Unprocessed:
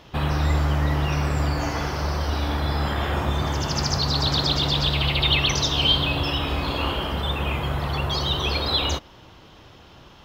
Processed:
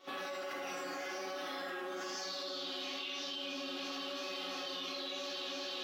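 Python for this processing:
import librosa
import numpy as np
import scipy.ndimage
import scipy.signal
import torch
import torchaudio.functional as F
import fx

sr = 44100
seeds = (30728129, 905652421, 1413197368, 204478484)

y = fx.doppler_pass(x, sr, speed_mps=9, closest_m=2.0, pass_at_s=3.91)
y = scipy.signal.sosfilt(scipy.signal.butter(4, 280.0, 'highpass', fs=sr, output='sos'), y)
y = fx.notch(y, sr, hz=930.0, q=12.0)
y = fx.resonator_bank(y, sr, root=54, chord='fifth', decay_s=0.64)
y = fx.vibrato(y, sr, rate_hz=7.2, depth_cents=39.0)
y = fx.stretch_grains(y, sr, factor=0.57, grain_ms=172.0)
y = fx.echo_alternate(y, sr, ms=169, hz=1700.0, feedback_pct=85, wet_db=-13)
y = fx.rev_schroeder(y, sr, rt60_s=0.43, comb_ms=30, drr_db=-7.0)
y = fx.env_flatten(y, sr, amount_pct=100)
y = y * librosa.db_to_amplitude(-3.0)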